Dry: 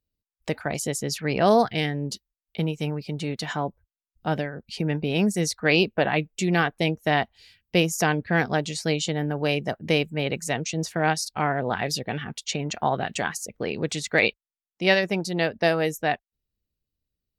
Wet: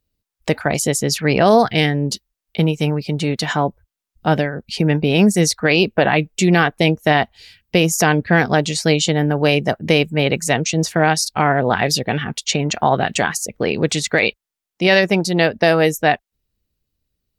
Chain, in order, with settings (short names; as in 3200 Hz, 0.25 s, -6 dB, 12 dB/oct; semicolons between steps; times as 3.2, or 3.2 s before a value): maximiser +12 dB; gain -2.5 dB